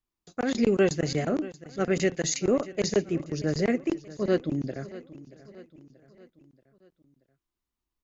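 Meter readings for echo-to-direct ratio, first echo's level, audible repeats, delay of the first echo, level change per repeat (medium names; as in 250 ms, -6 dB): -16.5 dB, -17.5 dB, 3, 631 ms, -6.0 dB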